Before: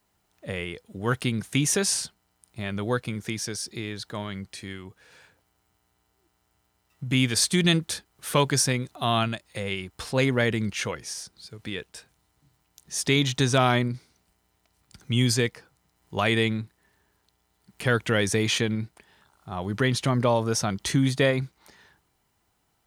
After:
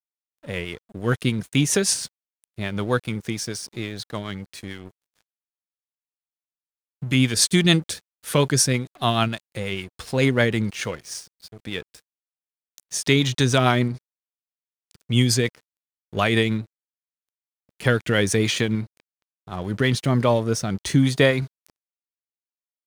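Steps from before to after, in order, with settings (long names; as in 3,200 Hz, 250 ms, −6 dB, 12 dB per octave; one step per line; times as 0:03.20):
rotating-speaker cabinet horn 6.7 Hz, later 0.7 Hz, at 0:19.47
dead-zone distortion −48.5 dBFS
level +5.5 dB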